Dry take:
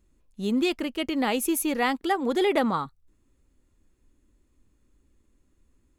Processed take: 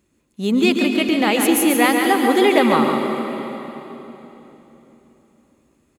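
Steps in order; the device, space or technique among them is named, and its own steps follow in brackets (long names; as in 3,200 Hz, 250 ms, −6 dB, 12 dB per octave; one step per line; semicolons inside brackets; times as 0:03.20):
PA in a hall (high-pass filter 120 Hz 12 dB per octave; parametric band 2,400 Hz +3.5 dB 0.43 octaves; single-tap delay 141 ms −6.5 dB; convolution reverb RT60 3.6 s, pre-delay 107 ms, DRR 5 dB)
level +7 dB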